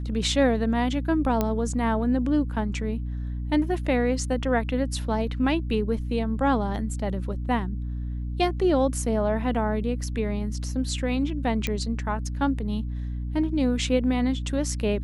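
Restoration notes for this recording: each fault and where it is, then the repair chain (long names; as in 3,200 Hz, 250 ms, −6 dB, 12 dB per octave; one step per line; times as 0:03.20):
mains hum 60 Hz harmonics 5 −30 dBFS
0:01.41: click −10 dBFS
0:11.67: click −12 dBFS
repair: click removal
hum removal 60 Hz, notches 5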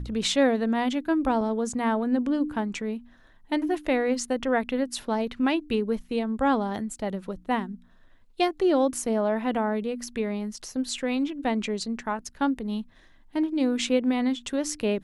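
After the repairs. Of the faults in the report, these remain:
none of them is left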